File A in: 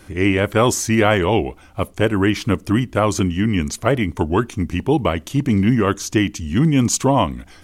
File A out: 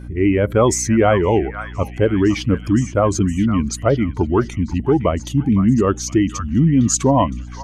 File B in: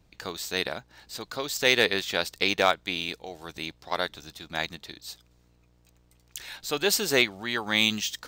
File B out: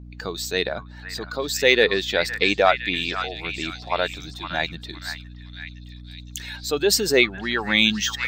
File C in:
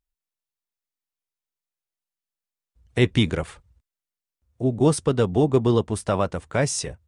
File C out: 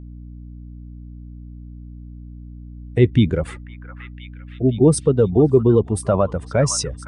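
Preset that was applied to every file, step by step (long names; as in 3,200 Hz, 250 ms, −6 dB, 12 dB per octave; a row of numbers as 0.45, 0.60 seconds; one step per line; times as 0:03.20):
expanding power law on the bin magnitudes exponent 1.6
echo through a band-pass that steps 513 ms, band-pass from 1,400 Hz, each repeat 0.7 octaves, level −6 dB
mains hum 60 Hz, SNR 16 dB
normalise the peak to −2 dBFS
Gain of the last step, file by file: +1.5, +5.5, +5.0 decibels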